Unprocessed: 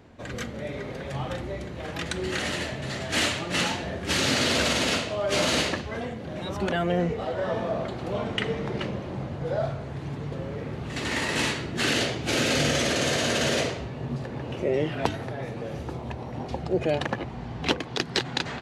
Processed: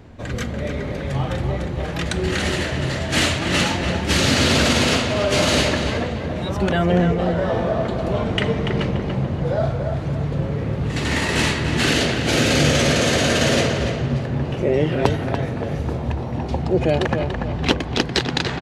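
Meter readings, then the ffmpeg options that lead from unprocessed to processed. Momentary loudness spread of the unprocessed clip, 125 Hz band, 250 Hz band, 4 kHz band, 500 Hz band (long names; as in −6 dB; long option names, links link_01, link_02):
12 LU, +11.0 dB, +8.5 dB, +5.5 dB, +7.0 dB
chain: -filter_complex "[0:a]lowshelf=frequency=130:gain=10,asplit=2[link_01][link_02];[link_02]adelay=288,lowpass=frequency=3300:poles=1,volume=-5.5dB,asplit=2[link_03][link_04];[link_04]adelay=288,lowpass=frequency=3300:poles=1,volume=0.39,asplit=2[link_05][link_06];[link_06]adelay=288,lowpass=frequency=3300:poles=1,volume=0.39,asplit=2[link_07][link_08];[link_08]adelay=288,lowpass=frequency=3300:poles=1,volume=0.39,asplit=2[link_09][link_10];[link_10]adelay=288,lowpass=frequency=3300:poles=1,volume=0.39[link_11];[link_01][link_03][link_05][link_07][link_09][link_11]amix=inputs=6:normalize=0,volume=5dB"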